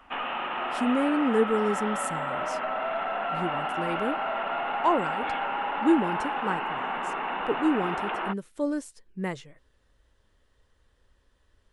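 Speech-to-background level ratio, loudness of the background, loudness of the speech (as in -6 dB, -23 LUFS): 1.5 dB, -30.5 LUFS, -29.0 LUFS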